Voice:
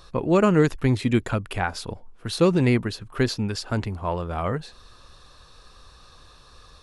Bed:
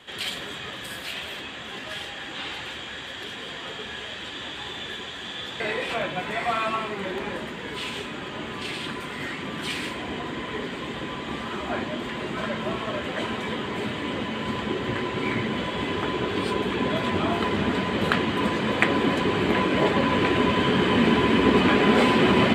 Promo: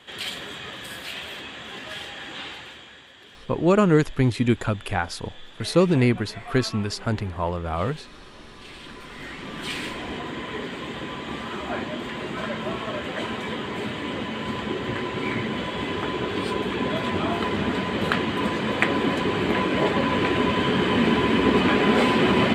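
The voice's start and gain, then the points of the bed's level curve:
3.35 s, +0.5 dB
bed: 0:02.36 −1 dB
0:03.11 −13 dB
0:08.53 −13 dB
0:09.73 −0.5 dB

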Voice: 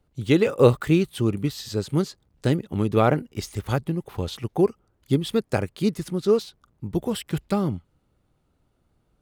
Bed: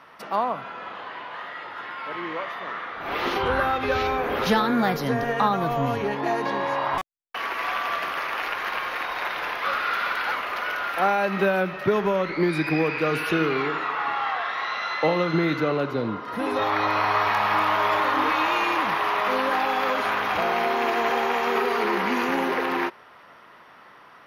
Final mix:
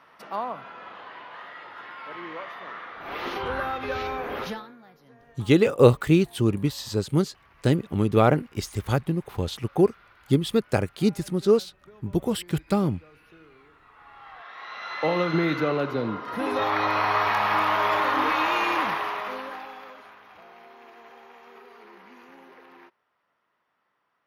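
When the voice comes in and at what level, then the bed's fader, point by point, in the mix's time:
5.20 s, +0.5 dB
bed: 0:04.41 −6 dB
0:04.79 −30 dB
0:13.78 −30 dB
0:15.16 −1 dB
0:18.83 −1 dB
0:20.18 −25.5 dB

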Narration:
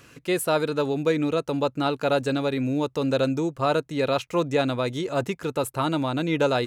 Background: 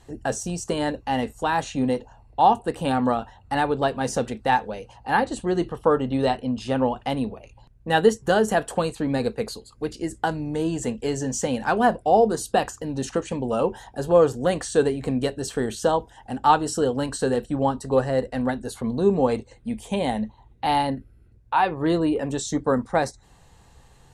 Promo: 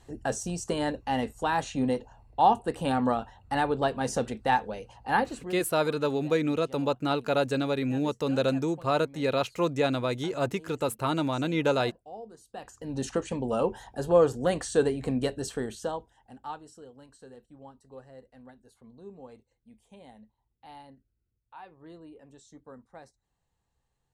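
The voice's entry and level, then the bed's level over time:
5.25 s, −3.0 dB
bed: 0:05.20 −4 dB
0:05.87 −25.5 dB
0:12.47 −25.5 dB
0:12.94 −4 dB
0:15.41 −4 dB
0:16.84 −26.5 dB

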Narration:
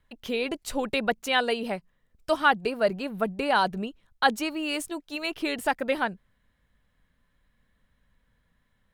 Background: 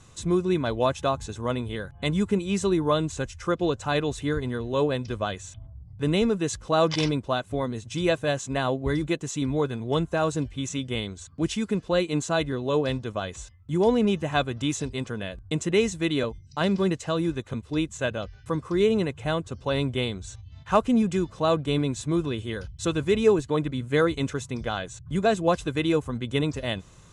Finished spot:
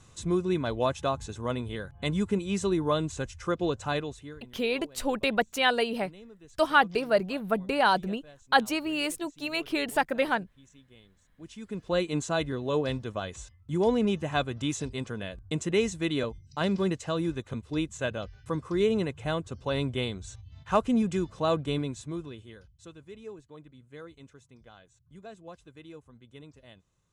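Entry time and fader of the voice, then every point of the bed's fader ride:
4.30 s, 0.0 dB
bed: 0:03.91 −3.5 dB
0:04.59 −26.5 dB
0:11.26 −26.5 dB
0:11.93 −3.5 dB
0:21.65 −3.5 dB
0:23.00 −23.5 dB

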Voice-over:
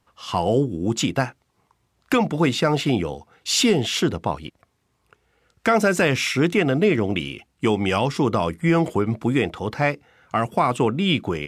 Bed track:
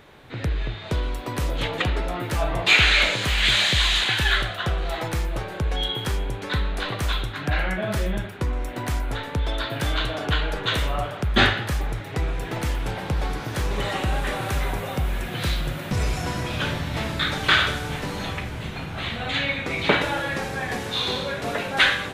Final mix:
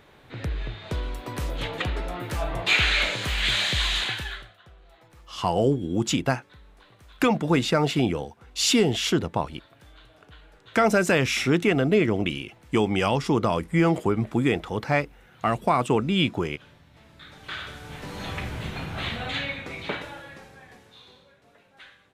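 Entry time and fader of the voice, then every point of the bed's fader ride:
5.10 s, −2.0 dB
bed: 0:04.06 −4.5 dB
0:04.62 −27 dB
0:17.00 −27 dB
0:18.44 −1 dB
0:19.09 −1 dB
0:21.44 −31 dB

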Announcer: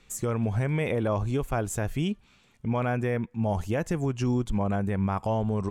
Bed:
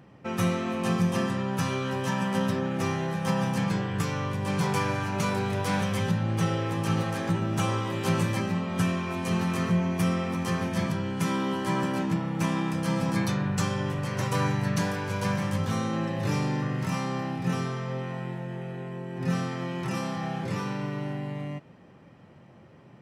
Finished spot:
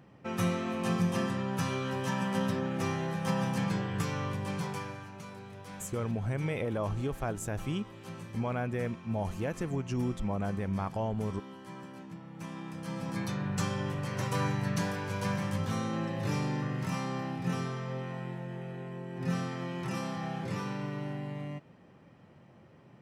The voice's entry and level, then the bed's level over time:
5.70 s, −6.0 dB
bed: 0:04.33 −4 dB
0:05.23 −18.5 dB
0:12.11 −18.5 dB
0:13.60 −4.5 dB

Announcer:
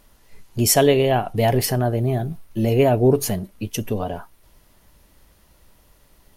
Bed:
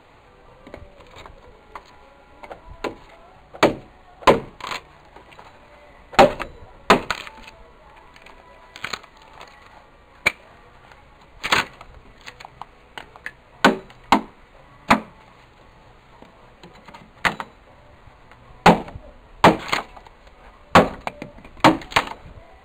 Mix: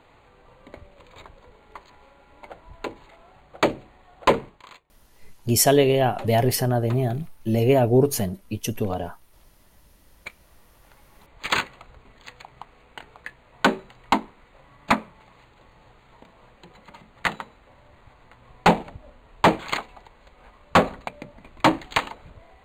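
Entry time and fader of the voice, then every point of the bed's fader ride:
4.90 s, −1.5 dB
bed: 0:04.43 −4.5 dB
0:04.88 −26 dB
0:09.83 −26 dB
0:11.31 −4.5 dB

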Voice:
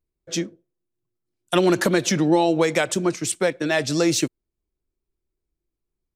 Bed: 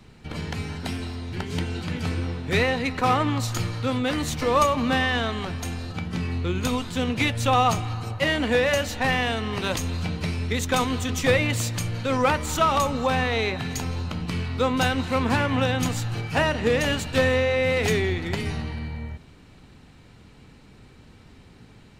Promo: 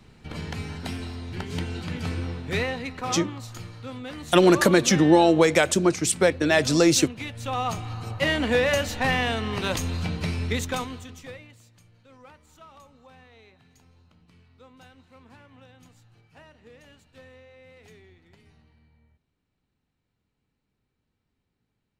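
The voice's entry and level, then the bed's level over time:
2.80 s, +1.5 dB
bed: 0:02.37 −2.5 dB
0:03.35 −12 dB
0:07.25 −12 dB
0:08.25 −0.5 dB
0:10.54 −0.5 dB
0:11.60 −29 dB

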